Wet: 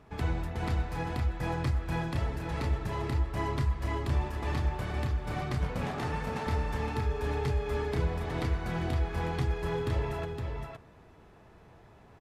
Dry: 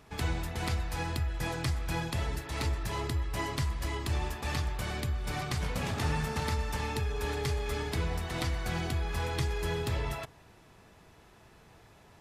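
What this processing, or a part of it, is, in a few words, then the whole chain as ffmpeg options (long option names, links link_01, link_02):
through cloth: -filter_complex "[0:a]highshelf=frequency=2700:gain=-14,asettb=1/sr,asplit=3[link_01][link_02][link_03];[link_01]atrim=end=5.884[link_04];[link_02]atrim=start=5.88:end=6.47,asetpts=PTS-STARTPTS,afade=type=in:duration=0.004:curve=qsin,afade=type=out:start_time=0.586:duration=0.004:curve=qsin,highpass=240[link_05];[link_03]atrim=start=6.466[link_06];[link_04][link_05]acrossfade=duration=0.004:curve1=hsin:curve2=qsin[link_07];[link_07][link_06]acrossfade=duration=0.004:curve1=qsin:curve2=hsin,aecho=1:1:514:0.562,volume=1.5dB"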